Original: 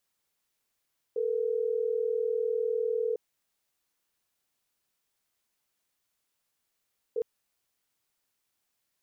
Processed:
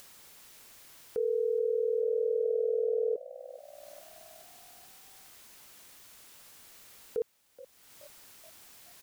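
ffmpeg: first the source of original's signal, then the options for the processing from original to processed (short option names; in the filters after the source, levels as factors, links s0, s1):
-f lavfi -i "aevalsrc='0.0355*(sin(2*PI*440*t)+sin(2*PI*480*t))*clip(min(mod(t,6),2-mod(t,6))/0.005,0,1)':d=6.06:s=44100"
-filter_complex "[0:a]acompressor=mode=upward:threshold=0.0224:ratio=2.5,asplit=6[s0][s1][s2][s3][s4][s5];[s1]adelay=425,afreqshift=61,volume=0.126[s6];[s2]adelay=850,afreqshift=122,volume=0.0692[s7];[s3]adelay=1275,afreqshift=183,volume=0.038[s8];[s4]adelay=1700,afreqshift=244,volume=0.0209[s9];[s5]adelay=2125,afreqshift=305,volume=0.0115[s10];[s0][s6][s7][s8][s9][s10]amix=inputs=6:normalize=0"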